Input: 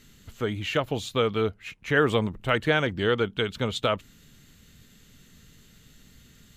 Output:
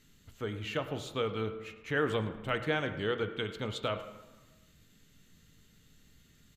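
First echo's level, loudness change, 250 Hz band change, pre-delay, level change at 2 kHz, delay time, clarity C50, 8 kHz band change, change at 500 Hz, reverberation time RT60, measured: -18.5 dB, -8.5 dB, -8.5 dB, 7 ms, -8.5 dB, 106 ms, 10.0 dB, -9.0 dB, -8.0 dB, 1.3 s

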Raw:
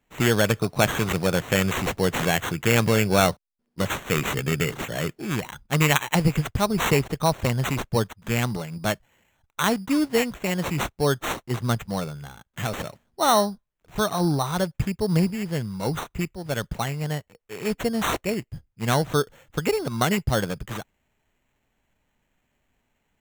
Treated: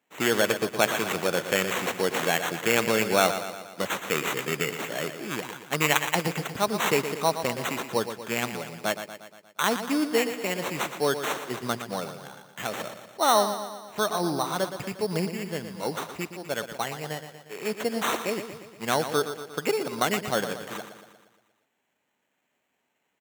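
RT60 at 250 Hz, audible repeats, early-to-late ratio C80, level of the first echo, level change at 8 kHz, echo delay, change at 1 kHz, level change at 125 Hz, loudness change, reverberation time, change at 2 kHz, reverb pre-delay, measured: no reverb, 6, no reverb, -10.0 dB, -1.0 dB, 118 ms, -1.0 dB, -12.5 dB, -3.0 dB, no reverb, -1.0 dB, no reverb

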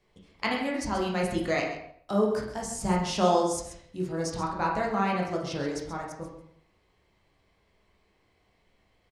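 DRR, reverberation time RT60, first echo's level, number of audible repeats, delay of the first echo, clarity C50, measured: -2.5 dB, 0.65 s, -11.0 dB, 1, 132 ms, 4.0 dB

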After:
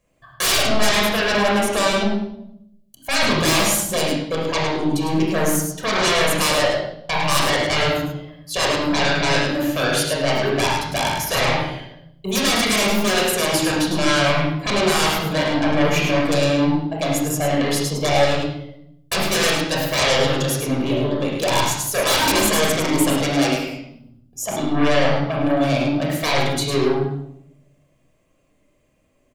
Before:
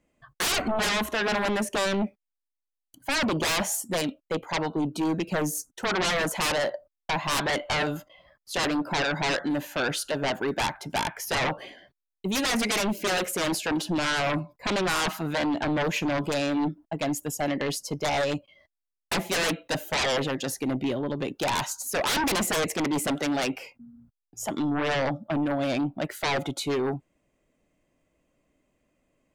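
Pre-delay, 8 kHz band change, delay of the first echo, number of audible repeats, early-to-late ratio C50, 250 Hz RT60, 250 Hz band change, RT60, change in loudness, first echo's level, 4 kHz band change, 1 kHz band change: 26 ms, +9.0 dB, 105 ms, 1, 0.5 dB, 1.1 s, +7.0 dB, 0.75 s, +8.0 dB, -6.0 dB, +9.0 dB, +7.5 dB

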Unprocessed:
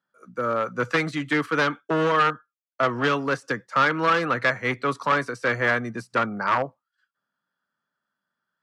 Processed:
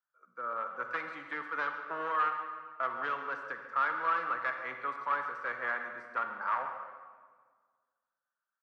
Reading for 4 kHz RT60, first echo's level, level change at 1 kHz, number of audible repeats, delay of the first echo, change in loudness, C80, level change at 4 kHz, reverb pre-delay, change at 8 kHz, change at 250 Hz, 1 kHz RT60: 1.2 s, -14.0 dB, -8.0 dB, 1, 139 ms, -11.0 dB, 6.5 dB, -19.5 dB, 39 ms, under -25 dB, -23.5 dB, 1.6 s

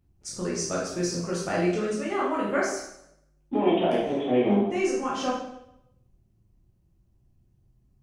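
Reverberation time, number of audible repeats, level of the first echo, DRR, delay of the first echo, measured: 0.75 s, no echo, no echo, -6.5 dB, no echo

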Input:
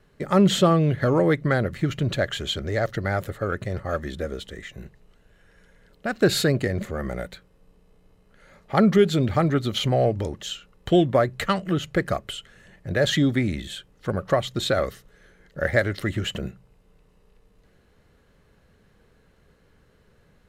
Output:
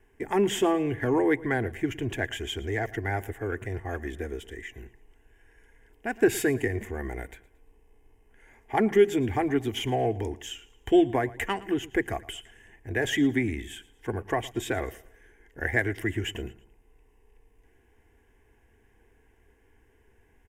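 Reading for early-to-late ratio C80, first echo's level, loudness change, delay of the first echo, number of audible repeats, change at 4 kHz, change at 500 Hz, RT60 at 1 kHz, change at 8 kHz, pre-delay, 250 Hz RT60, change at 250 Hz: no reverb, -20.0 dB, -4.5 dB, 113 ms, 2, -8.0 dB, -4.0 dB, no reverb, -3.5 dB, no reverb, no reverb, -4.0 dB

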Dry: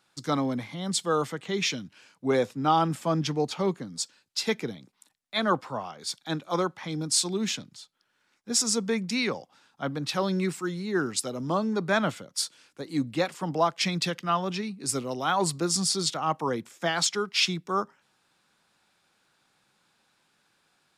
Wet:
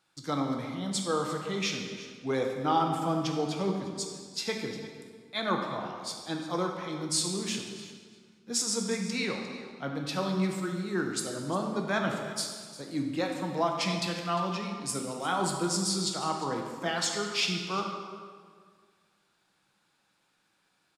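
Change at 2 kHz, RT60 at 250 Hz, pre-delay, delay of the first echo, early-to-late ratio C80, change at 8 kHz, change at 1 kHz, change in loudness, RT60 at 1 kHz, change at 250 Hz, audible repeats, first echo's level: -3.0 dB, 2.0 s, 4 ms, 352 ms, 5.0 dB, -3.5 dB, -3.0 dB, -3.5 dB, 1.7 s, -2.5 dB, 1, -16.5 dB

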